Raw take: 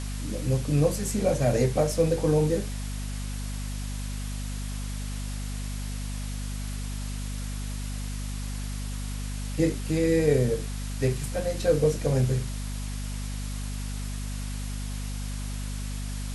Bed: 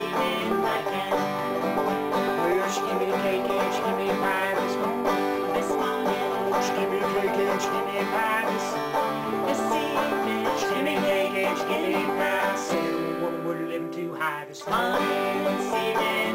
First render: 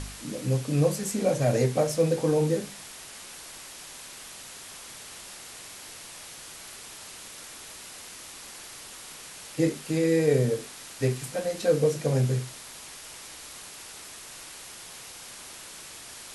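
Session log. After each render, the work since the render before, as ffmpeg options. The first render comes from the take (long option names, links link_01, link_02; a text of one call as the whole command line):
ffmpeg -i in.wav -af "bandreject=frequency=50:width_type=h:width=4,bandreject=frequency=100:width_type=h:width=4,bandreject=frequency=150:width_type=h:width=4,bandreject=frequency=200:width_type=h:width=4,bandreject=frequency=250:width_type=h:width=4" out.wav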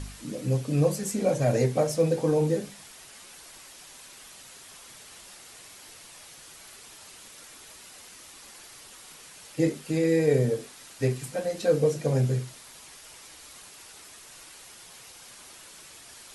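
ffmpeg -i in.wav -af "afftdn=noise_reduction=6:noise_floor=-44" out.wav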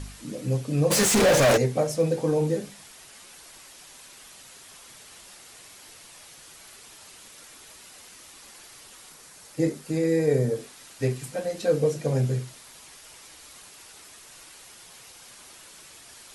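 ffmpeg -i in.wav -filter_complex "[0:a]asplit=3[link_01][link_02][link_03];[link_01]afade=type=out:start_time=0.9:duration=0.02[link_04];[link_02]asplit=2[link_05][link_06];[link_06]highpass=frequency=720:poles=1,volume=37dB,asoftclip=type=tanh:threshold=-12dB[link_07];[link_05][link_07]amix=inputs=2:normalize=0,lowpass=frequency=5800:poles=1,volume=-6dB,afade=type=in:start_time=0.9:duration=0.02,afade=type=out:start_time=1.56:duration=0.02[link_08];[link_03]afade=type=in:start_time=1.56:duration=0.02[link_09];[link_04][link_08][link_09]amix=inputs=3:normalize=0,asettb=1/sr,asplit=3[link_10][link_11][link_12];[link_10]atrim=end=9.094[link_13];[link_11]atrim=start=9.09:end=10.56,asetpts=PTS-STARTPTS,afade=type=in:duration=0.004:curve=qsin,afade=type=out:start_time=1.466:duration=0.004:curve=qsin,equalizer=frequency=2900:width_type=o:width=0.77:gain=-5.5[link_14];[link_12]atrim=start=10.556[link_15];[link_13][link_14]acrossfade=duration=0.004:curve1=hsin:curve2=qsin[link_16];[link_16][link_15]acrossfade=duration=0.004:curve1=qsin:curve2=hsin" out.wav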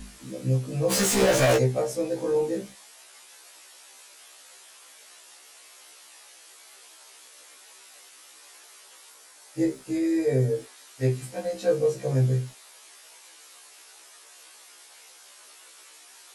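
ffmpeg -i in.wav -filter_complex "[0:a]acrossover=split=330|2500[link_01][link_02][link_03];[link_01]aeval=exprs='val(0)*gte(abs(val(0)),0.00355)':channel_layout=same[link_04];[link_04][link_02][link_03]amix=inputs=3:normalize=0,afftfilt=real='re*1.73*eq(mod(b,3),0)':imag='im*1.73*eq(mod(b,3),0)':win_size=2048:overlap=0.75" out.wav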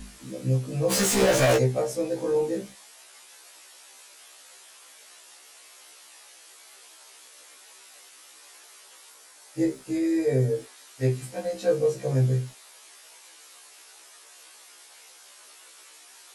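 ffmpeg -i in.wav -af anull out.wav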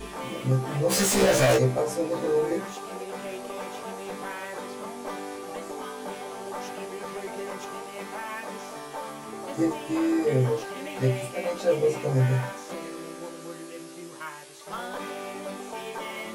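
ffmpeg -i in.wav -i bed.wav -filter_complex "[1:a]volume=-11dB[link_01];[0:a][link_01]amix=inputs=2:normalize=0" out.wav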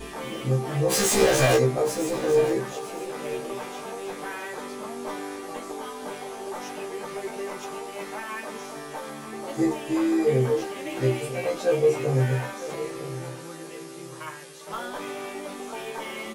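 ffmpeg -i in.wav -filter_complex "[0:a]asplit=2[link_01][link_02];[link_02]adelay=13,volume=-5dB[link_03];[link_01][link_03]amix=inputs=2:normalize=0,aecho=1:1:954|1908|2862:0.2|0.0459|0.0106" out.wav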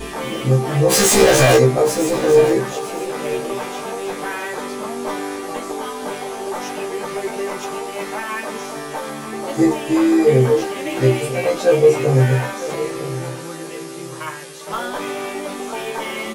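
ffmpeg -i in.wav -af "volume=8.5dB,alimiter=limit=-2dB:level=0:latency=1" out.wav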